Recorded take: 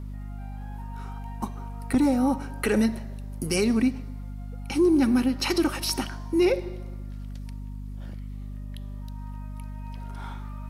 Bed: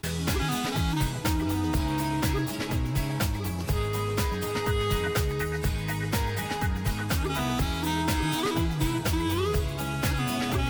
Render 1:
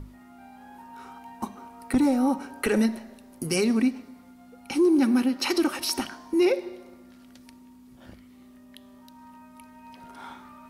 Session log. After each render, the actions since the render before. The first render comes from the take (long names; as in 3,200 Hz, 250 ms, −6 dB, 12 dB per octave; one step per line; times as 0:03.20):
mains-hum notches 50/100/150/200 Hz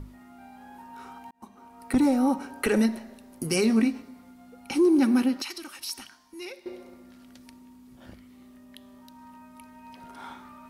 0:01.31–0:01.98: fade in
0:03.62–0:04.02: double-tracking delay 18 ms −7 dB
0:05.42–0:06.66: guitar amp tone stack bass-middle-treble 5-5-5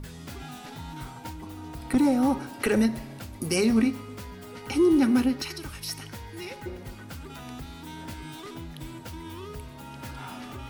mix in bed −13.5 dB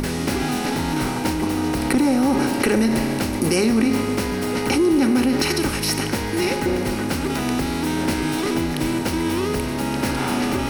compressor on every frequency bin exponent 0.6
in parallel at +1.5 dB: compressor whose output falls as the input rises −27 dBFS, ratio −1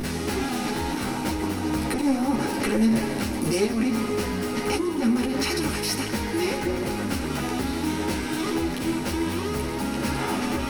soft clipping −14 dBFS, distortion −18 dB
string-ensemble chorus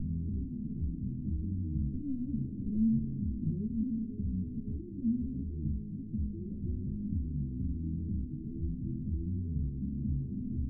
inverse Chebyshev low-pass filter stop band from 1,100 Hz, stop band 80 dB
hum removal 51.87 Hz, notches 3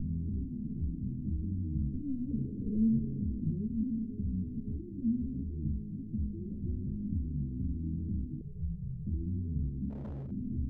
0:02.31–0:03.40: parametric band 450 Hz +14 dB 0.35 octaves
0:08.41–0:09.07: Chebyshev band-stop filter 180–420 Hz, order 3
0:09.90–0:10.31: hard clipping −38 dBFS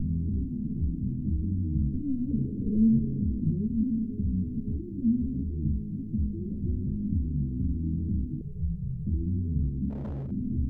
level +6 dB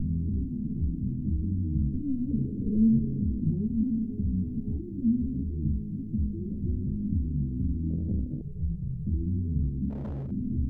0:03.53–0:04.97: parametric band 760 Hz +14.5 dB 0.21 octaves
0:07.90–0:08.94: phase distortion by the signal itself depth 0.36 ms